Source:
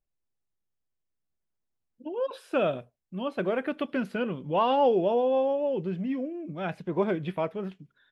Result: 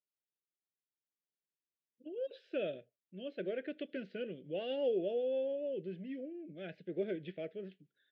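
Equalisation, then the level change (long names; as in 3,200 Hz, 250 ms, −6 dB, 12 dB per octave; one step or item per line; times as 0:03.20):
Butterworth band-reject 1,000 Hz, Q 1.1
loudspeaker in its box 230–4,100 Hz, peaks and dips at 240 Hz −6 dB, 760 Hz −8 dB, 1,300 Hz −9 dB, 2,400 Hz −3 dB
−7.5 dB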